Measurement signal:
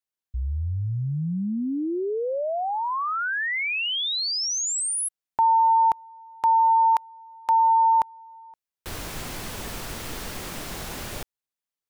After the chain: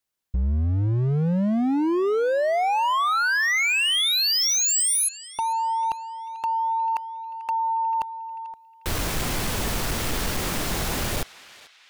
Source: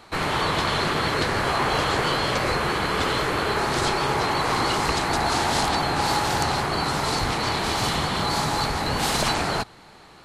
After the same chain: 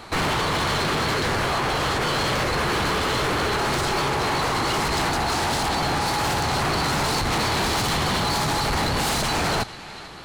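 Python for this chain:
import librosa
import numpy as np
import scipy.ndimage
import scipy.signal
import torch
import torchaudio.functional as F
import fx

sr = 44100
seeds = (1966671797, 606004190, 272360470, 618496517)

p1 = fx.low_shelf(x, sr, hz=170.0, db=3.0)
p2 = fx.over_compress(p1, sr, threshold_db=-25.0, ratio=-1.0)
p3 = np.clip(p2, -10.0 ** (-26.0 / 20.0), 10.0 ** (-26.0 / 20.0))
p4 = p3 + fx.echo_banded(p3, sr, ms=442, feedback_pct=55, hz=2800.0, wet_db=-15.0, dry=0)
y = p4 * librosa.db_to_amplitude(5.5)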